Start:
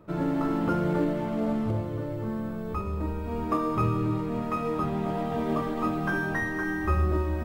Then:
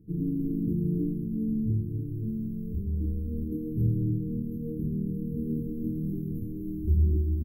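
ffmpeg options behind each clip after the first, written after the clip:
-af "aecho=1:1:1.2:0.69,afftfilt=real='re*(1-between(b*sr/4096,480,11000))':imag='im*(1-between(b*sr/4096,480,11000))':win_size=4096:overlap=0.75,volume=-1.5dB"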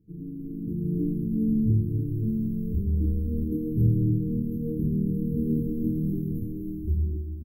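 -af "dynaudnorm=f=210:g=9:m=14dB,volume=-8.5dB"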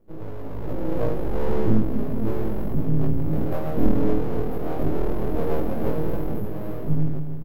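-filter_complex "[0:a]aeval=exprs='abs(val(0))':c=same,asplit=2[a][b];[b]adelay=19,volume=-3dB[c];[a][c]amix=inputs=2:normalize=0,volume=4dB"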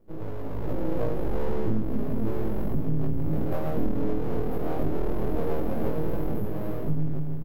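-af "acompressor=threshold=-19dB:ratio=4"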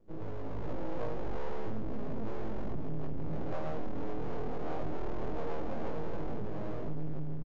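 -filter_complex "[0:a]acrossover=split=590[a][b];[a]asoftclip=type=tanh:threshold=-22dB[c];[c][b]amix=inputs=2:normalize=0,aresample=16000,aresample=44100,volume=-4dB"

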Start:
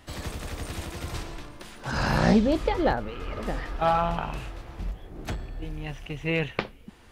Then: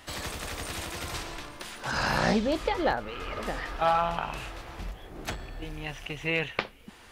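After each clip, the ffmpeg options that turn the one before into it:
-filter_complex "[0:a]lowshelf=f=450:g=-10,asplit=2[a][b];[b]acompressor=threshold=-40dB:ratio=6,volume=-0.5dB[c];[a][c]amix=inputs=2:normalize=0"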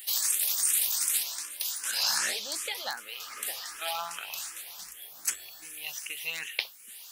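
-filter_complex "[0:a]aderivative,crystalizer=i=2:c=0,asplit=2[a][b];[b]afreqshift=2.6[c];[a][c]amix=inputs=2:normalize=1,volume=9dB"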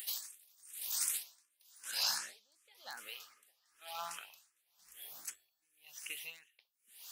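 -af "acompressor=mode=upward:threshold=-37dB:ratio=2.5,aeval=exprs='val(0)*pow(10,-33*(0.5-0.5*cos(2*PI*0.98*n/s))/20)':c=same,volume=-5.5dB"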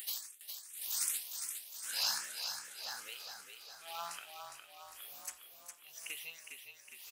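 -filter_complex "[0:a]asplit=9[a][b][c][d][e][f][g][h][i];[b]adelay=409,afreqshift=-37,volume=-6.5dB[j];[c]adelay=818,afreqshift=-74,volume=-11.2dB[k];[d]adelay=1227,afreqshift=-111,volume=-16dB[l];[e]adelay=1636,afreqshift=-148,volume=-20.7dB[m];[f]adelay=2045,afreqshift=-185,volume=-25.4dB[n];[g]adelay=2454,afreqshift=-222,volume=-30.2dB[o];[h]adelay=2863,afreqshift=-259,volume=-34.9dB[p];[i]adelay=3272,afreqshift=-296,volume=-39.6dB[q];[a][j][k][l][m][n][o][p][q]amix=inputs=9:normalize=0"

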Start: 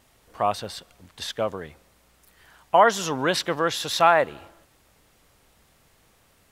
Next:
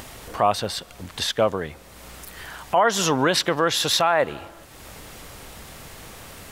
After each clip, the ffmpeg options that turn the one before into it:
-filter_complex "[0:a]asplit=2[a][b];[b]acompressor=mode=upward:threshold=-29dB:ratio=2.5,volume=2dB[c];[a][c]amix=inputs=2:normalize=0,alimiter=limit=-8.5dB:level=0:latency=1:release=118"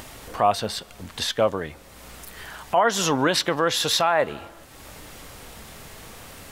-af "flanger=delay=3.2:depth=1.7:regen=86:speed=0.6:shape=triangular,volume=3.5dB"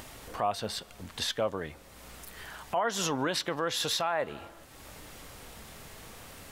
-af "alimiter=limit=-13.5dB:level=0:latency=1:release=240,volume=-5.5dB"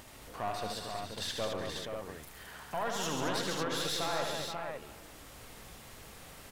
-filter_complex "[0:a]aeval=exprs='(tanh(15.8*val(0)+0.5)-tanh(0.5))/15.8':c=same,asplit=2[a][b];[b]aecho=0:1:75|136|218|372|475|541:0.501|0.473|0.447|0.158|0.473|0.501[c];[a][c]amix=inputs=2:normalize=0,volume=-4dB"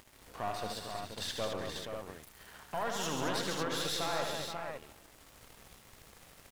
-af "aeval=exprs='sgn(val(0))*max(abs(val(0))-0.00237,0)':c=same"

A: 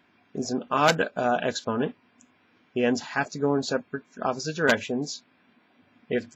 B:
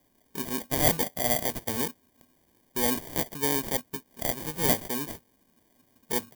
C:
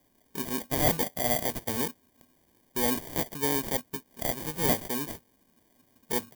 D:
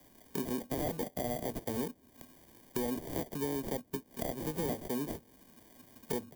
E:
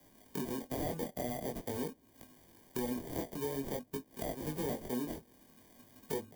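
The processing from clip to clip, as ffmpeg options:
-af "acrusher=samples=33:mix=1:aa=0.000001,aemphasis=mode=production:type=50fm,volume=-5.5dB"
-af "asoftclip=type=tanh:threshold=-9dB"
-filter_complex "[0:a]alimiter=limit=-16dB:level=0:latency=1:release=355,acrossover=split=250|660[a][b][c];[a]acompressor=threshold=-49dB:ratio=4[d];[b]acompressor=threshold=-42dB:ratio=4[e];[c]acompressor=threshold=-48dB:ratio=4[f];[d][e][f]amix=inputs=3:normalize=0,volume=7dB"
-af "flanger=delay=18.5:depth=6.4:speed=0.48,volume=1dB"

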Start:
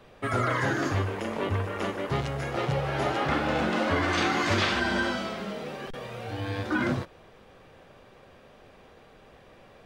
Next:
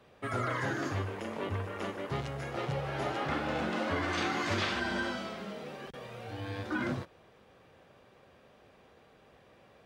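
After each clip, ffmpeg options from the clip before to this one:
-af "highpass=58,volume=-6.5dB"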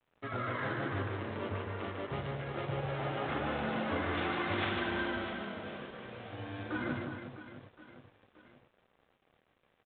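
-af "aecho=1:1:150|360|654|1066|1642:0.631|0.398|0.251|0.158|0.1,aeval=exprs='sgn(val(0))*max(abs(val(0))-0.00158,0)':c=same,volume=-3.5dB" -ar 8000 -c:a adpcm_ima_wav

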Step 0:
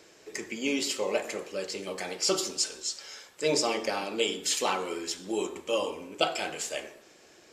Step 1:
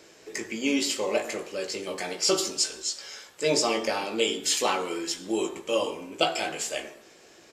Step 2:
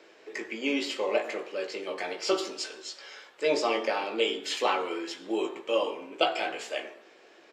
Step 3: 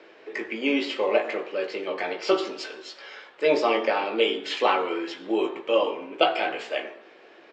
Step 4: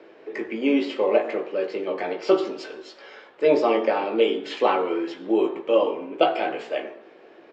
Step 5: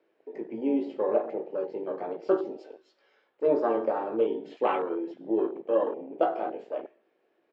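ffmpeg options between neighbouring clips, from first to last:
-filter_complex "[0:a]asplit=2[a][b];[b]adelay=18,volume=-6.5dB[c];[a][c]amix=inputs=2:normalize=0,volume=2dB"
-filter_complex "[0:a]acrossover=split=260 4000:gain=0.0891 1 0.126[a][b][c];[a][b][c]amix=inputs=3:normalize=0"
-af "lowpass=3.5k,volume=5dB"
-af "tiltshelf=f=970:g=5.5"
-af "afwtdn=0.0398,volume=-5.5dB"

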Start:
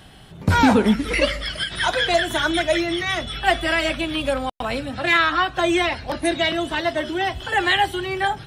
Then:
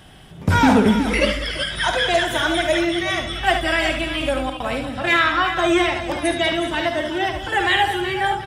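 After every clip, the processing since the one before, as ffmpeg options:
-filter_complex "[0:a]bandreject=f=4.2k:w=9.4,asoftclip=type=hard:threshold=-8dB,asplit=2[a][b];[b]aecho=0:1:53|73|191|374:0.282|0.398|0.188|0.282[c];[a][c]amix=inputs=2:normalize=0"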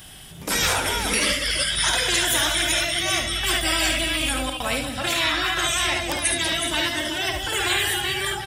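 -af "lowshelf=f=110:g=5,crystalizer=i=6:c=0,afftfilt=real='re*lt(hypot(re,im),0.708)':imag='im*lt(hypot(re,im),0.708)':win_size=1024:overlap=0.75,volume=-4.5dB"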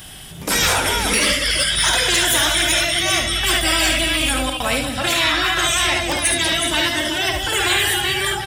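-af "aeval=exprs='0.562*sin(PI/2*2*val(0)/0.562)':c=same,volume=-4.5dB"

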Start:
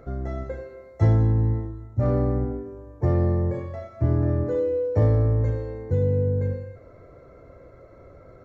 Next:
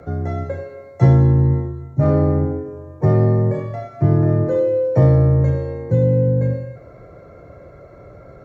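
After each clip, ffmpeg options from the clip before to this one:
-af "afreqshift=24,volume=6.5dB"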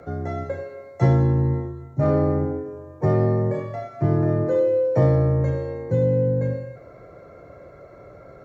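-af "lowshelf=f=190:g=-7.5,volume=-1dB"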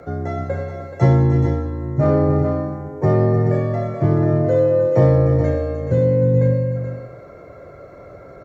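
-af "aecho=1:1:304|428:0.316|0.398,volume=3.5dB"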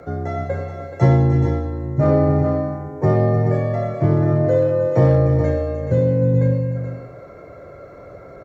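-filter_complex "[0:a]asplit=2[a][b];[b]adelay=90,highpass=300,lowpass=3.4k,asoftclip=type=hard:threshold=-10.5dB,volume=-8dB[c];[a][c]amix=inputs=2:normalize=0"

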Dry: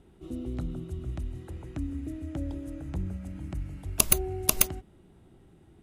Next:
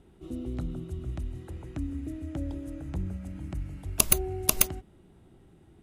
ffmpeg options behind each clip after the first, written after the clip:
-af anull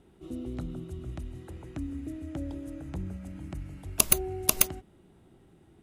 -af "lowshelf=f=98:g=-6.5"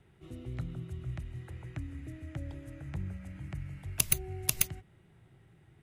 -filter_complex "[0:a]acrossover=split=320|3000[a][b][c];[b]acompressor=threshold=-40dB:ratio=6[d];[a][d][c]amix=inputs=3:normalize=0,equalizer=f=125:t=o:w=1:g=12,equalizer=f=250:t=o:w=1:g=-8,equalizer=f=2k:t=o:w=1:g=10,volume=-5.5dB"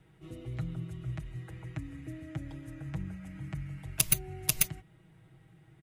-af "aecho=1:1:6.3:0.65"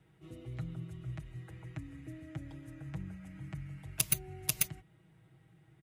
-af "highpass=46,volume=-4dB"

